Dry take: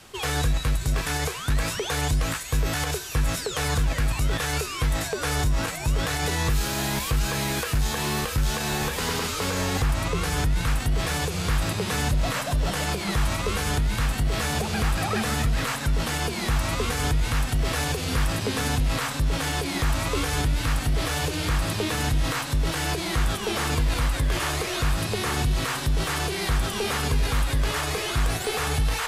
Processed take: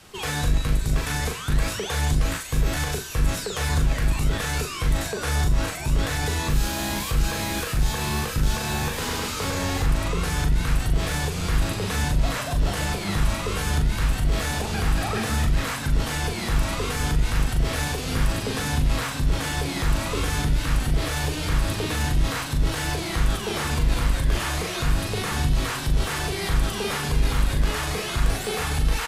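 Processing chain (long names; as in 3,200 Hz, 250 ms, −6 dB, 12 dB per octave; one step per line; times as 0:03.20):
sub-octave generator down 1 octave, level −3 dB
in parallel at −11 dB: soft clipping −22.5 dBFS, distortion −10 dB
on the sum: double-tracking delay 40 ms −5 dB
level −3.5 dB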